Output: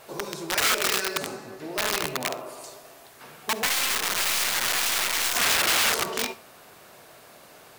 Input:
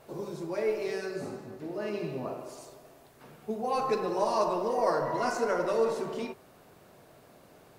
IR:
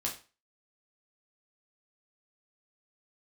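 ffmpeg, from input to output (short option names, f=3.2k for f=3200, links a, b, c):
-filter_complex "[0:a]asettb=1/sr,asplit=3[a][b][c];[a]atrim=end=2.014[d];[b]atrim=start=2.01:end=2.64,asetpts=PTS-STARTPTS,afade=t=in:d=0.004:c=qsin,afade=t=out:st=0.626:d=0.004:c=qsin,equalizer=f=5.9k:w=1.2:g=-13[e];[c]atrim=start=2.636[f];[d][e]acrossfade=d=0.004:c1=hsin:c2=qsin[g];[g][f]acrossfade=d=0.004:c1=qsin:c2=hsin,aeval=exprs='(mod(23.7*val(0)+1,2)-1)/23.7':c=same,tiltshelf=f=670:g=-7,asettb=1/sr,asplit=3[h][i][j];[h]atrim=end=3.664[k];[i]atrim=start=3.66:end=5.35,asetpts=PTS-STARTPTS,afade=t=in:d=0.004:c=qsin,afade=t=out:st=1.686:d=0.004:c=qsin,aeval=exprs='0.158*(cos(1*acos(clip(val(0)/0.158,-1,1)))-cos(1*PI/2))+0.0316*(cos(3*acos(clip(val(0)/0.158,-1,1)))-cos(3*PI/2))+0.00562*(cos(8*acos(clip(val(0)/0.158,-1,1)))-cos(8*PI/2))':c=same[l];[j]atrim=start=5.346[m];[k][l]acrossfade=d=0.004:c1=hsin:c2=qsin[n];[n][m]acrossfade=d=0.004:c1=qsin:c2=hsin,asplit=2[o][p];[1:a]atrim=start_sample=2205,adelay=50[q];[p][q]afir=irnorm=-1:irlink=0,volume=-19.5dB[r];[o][r]amix=inputs=2:normalize=0,volume=5.5dB"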